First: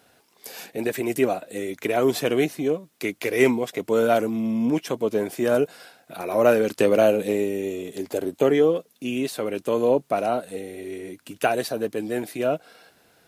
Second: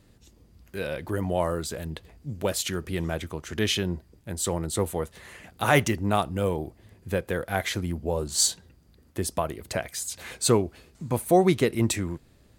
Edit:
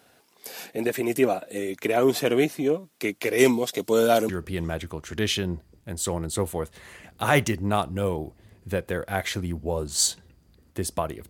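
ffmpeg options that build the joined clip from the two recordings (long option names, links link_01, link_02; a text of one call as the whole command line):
ffmpeg -i cue0.wav -i cue1.wav -filter_complex "[0:a]asettb=1/sr,asplit=3[link_01][link_02][link_03];[link_01]atrim=end=3.384[link_04];[link_02]atrim=start=3.38:end=4.29,asetpts=PTS-STARTPTS,afade=type=in:duration=0.004:curve=qsin,afade=type=out:start_time=0.906:duration=0.004:curve=qsin,highshelf=frequency=3000:width_type=q:width=1.5:gain=6.5[link_05];[link_03]atrim=start=4.286[link_06];[link_04][link_05]acrossfade=duration=0.004:curve1=hsin:curve2=qsin[link_07];[link_07][link_06]acrossfade=duration=0.004:curve1=qsin:curve2=hsin,apad=whole_dur=11.29,atrim=end=11.29,atrim=end=4.292[link_08];[1:a]atrim=start=2.688:end=9.69[link_09];[link_08][link_09]acrossfade=duration=0.004:curve1=hsin:curve2=hsin" out.wav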